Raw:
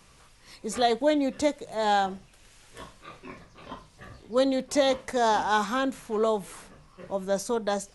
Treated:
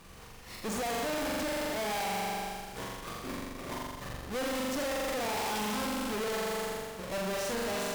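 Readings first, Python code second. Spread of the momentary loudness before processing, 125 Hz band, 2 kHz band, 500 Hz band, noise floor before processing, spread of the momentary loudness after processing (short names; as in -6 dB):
21 LU, 0.0 dB, -2.5 dB, -7.5 dB, -57 dBFS, 8 LU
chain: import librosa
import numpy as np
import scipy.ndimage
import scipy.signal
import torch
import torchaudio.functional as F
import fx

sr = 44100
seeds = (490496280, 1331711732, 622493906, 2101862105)

y = fx.halfwave_hold(x, sr)
y = fx.room_flutter(y, sr, wall_m=7.3, rt60_s=1.4)
y = fx.tube_stage(y, sr, drive_db=32.0, bias=0.55)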